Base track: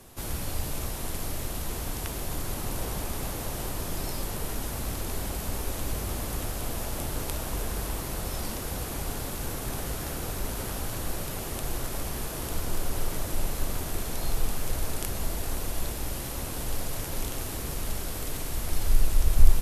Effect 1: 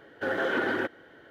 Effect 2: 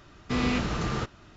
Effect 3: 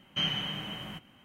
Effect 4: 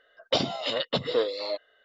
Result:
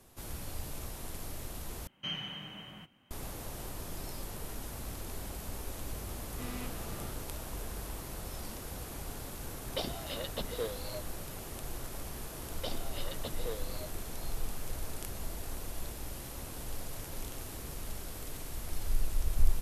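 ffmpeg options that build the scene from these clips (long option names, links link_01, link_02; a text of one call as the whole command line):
ffmpeg -i bed.wav -i cue0.wav -i cue1.wav -i cue2.wav -i cue3.wav -filter_complex "[4:a]asplit=2[link_01][link_02];[0:a]volume=-9dB[link_03];[link_01]aeval=exprs='sgn(val(0))*max(abs(val(0))-0.00266,0)':channel_layout=same[link_04];[link_03]asplit=2[link_05][link_06];[link_05]atrim=end=1.874[link_07];[3:a]atrim=end=1.24,asetpts=PTS-STARTPTS,volume=-8dB[link_08];[link_06]atrim=start=3.106[link_09];[2:a]atrim=end=1.36,asetpts=PTS-STARTPTS,volume=-17dB,afade=type=in:duration=0.004:curve=hsin,afade=type=out:start_time=1.356:duration=0.004:curve=hsin,adelay=6080[link_10];[link_04]atrim=end=1.84,asetpts=PTS-STARTPTS,volume=-11.5dB,afade=type=in:duration=0.004:curve=hsin,afade=type=out:start_time=1.836:duration=0.004:curve=hsin,adelay=9440[link_11];[link_02]atrim=end=1.84,asetpts=PTS-STARTPTS,volume=-15.5dB,afade=type=in:duration=0.004:curve=hsin,afade=type=out:start_time=1.836:duration=0.004:curve=hsin,adelay=12310[link_12];[link_07][link_08]acrossfade=duration=0.004:curve1=hsin:curve2=hsin[link_13];[link_13][link_09]acrossfade=duration=0.004:curve1=hsin:curve2=hsin[link_14];[link_14][link_10][link_11][link_12]amix=inputs=4:normalize=0" out.wav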